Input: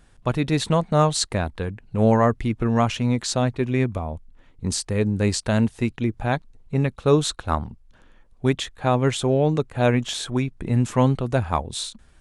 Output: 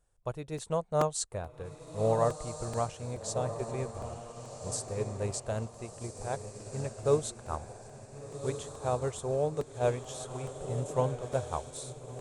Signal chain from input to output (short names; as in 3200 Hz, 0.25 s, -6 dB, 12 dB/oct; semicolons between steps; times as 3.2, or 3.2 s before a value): graphic EQ 250/500/2000/4000/8000 Hz -12/+6/-7/-6/+7 dB; diffused feedback echo 1.429 s, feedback 54%, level -6 dB; crackling interface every 0.43 s, samples 128, repeat, from 0.58; upward expander 1.5:1, over -34 dBFS; gain -8 dB